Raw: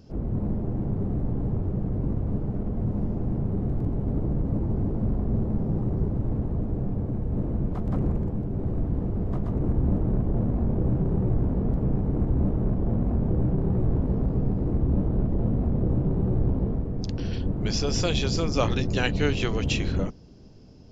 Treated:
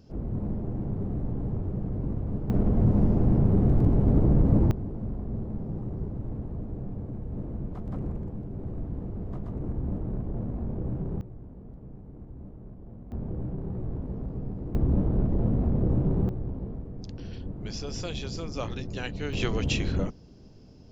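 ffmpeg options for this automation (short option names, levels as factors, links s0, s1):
-af "asetnsamples=n=441:p=0,asendcmd='2.5 volume volume 5.5dB;4.71 volume volume -7.5dB;11.21 volume volume -20dB;13.12 volume volume -9.5dB;14.75 volume volume -0.5dB;16.29 volume volume -9.5dB;19.33 volume volume -1.5dB',volume=0.668"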